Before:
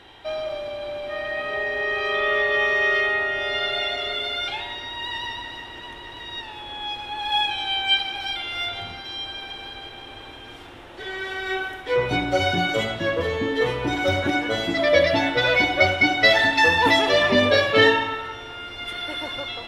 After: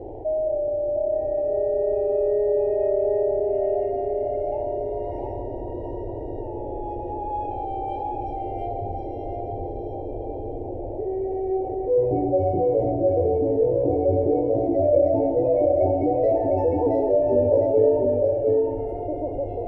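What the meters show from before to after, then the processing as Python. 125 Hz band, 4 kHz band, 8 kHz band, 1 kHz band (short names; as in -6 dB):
+2.5 dB, under -40 dB, under -30 dB, -3.0 dB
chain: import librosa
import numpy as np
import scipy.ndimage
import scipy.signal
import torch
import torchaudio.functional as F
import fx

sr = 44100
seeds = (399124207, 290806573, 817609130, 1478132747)

p1 = scipy.signal.sosfilt(scipy.signal.cheby2(4, 40, 1400.0, 'lowpass', fs=sr, output='sos'), x)
p2 = fx.peak_eq(p1, sr, hz=63.0, db=-11.5, octaves=0.21)
p3 = fx.fixed_phaser(p2, sr, hz=480.0, stages=4)
p4 = p3 + fx.echo_single(p3, sr, ms=705, db=-4.0, dry=0)
y = fx.env_flatten(p4, sr, amount_pct=50)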